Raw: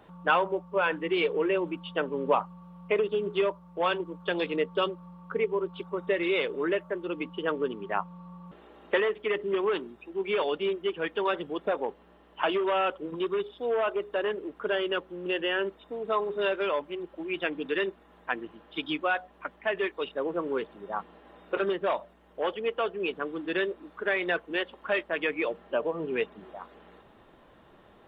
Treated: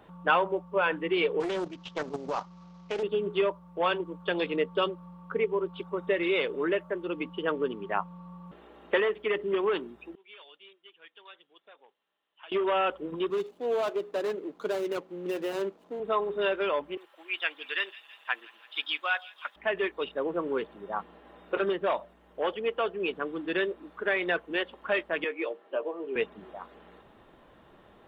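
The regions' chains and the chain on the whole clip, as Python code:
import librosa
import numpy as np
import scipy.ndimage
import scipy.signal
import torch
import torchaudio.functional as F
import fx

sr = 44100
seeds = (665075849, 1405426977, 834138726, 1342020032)

y = fx.chain(x, sr, fx.cvsd(bps=32000),
    fx.level_steps(step_db=10),
    fx.doppler_dist(depth_ms=0.37), at=(1.4, 3.03))
y = fx.chain(y, sr, fx.bandpass_q(hz=3800.0, q=3.4),
    fx.air_absorb(metres=420.0), at=(10.15, 12.52))
y = fx.chain(y, sr, fx.median_filter(points=25),
    fx.highpass(hz=110.0, slope=24), at=(13.3, 16.0))
y = fx.chain(y, sr, fx.highpass(hz=1000.0, slope=12),
    fx.high_shelf(hz=3200.0, db=8.5),
    fx.echo_wet_highpass(ms=165, feedback_pct=70, hz=3300.0, wet_db=-12.5), at=(16.97, 19.56))
y = fx.chain(y, sr, fx.ladder_highpass(hz=260.0, resonance_pct=25),
    fx.doubler(ms=15.0, db=-6.5), at=(25.24, 26.16))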